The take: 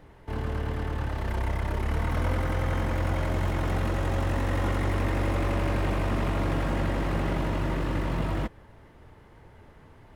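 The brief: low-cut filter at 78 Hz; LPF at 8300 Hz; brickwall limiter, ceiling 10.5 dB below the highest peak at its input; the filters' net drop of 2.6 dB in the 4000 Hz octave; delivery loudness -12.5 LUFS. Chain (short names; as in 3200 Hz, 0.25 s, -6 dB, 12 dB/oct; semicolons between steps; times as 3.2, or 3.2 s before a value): HPF 78 Hz; LPF 8300 Hz; bell 4000 Hz -3.5 dB; gain +23 dB; limiter -4 dBFS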